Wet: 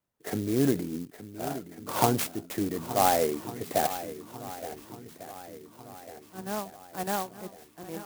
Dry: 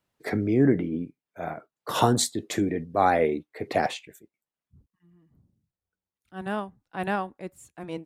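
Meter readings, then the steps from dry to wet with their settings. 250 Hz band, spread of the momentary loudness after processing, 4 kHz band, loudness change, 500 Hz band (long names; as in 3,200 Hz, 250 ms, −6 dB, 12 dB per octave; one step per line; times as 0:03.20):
−4.5 dB, 20 LU, −3.5 dB, −3.0 dB, −3.0 dB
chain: feedback echo with a long and a short gap by turns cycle 1,449 ms, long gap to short 1.5 to 1, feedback 50%, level −13 dB
dynamic equaliser 740 Hz, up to +4 dB, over −34 dBFS, Q 1.3
converter with an unsteady clock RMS 0.082 ms
level −5 dB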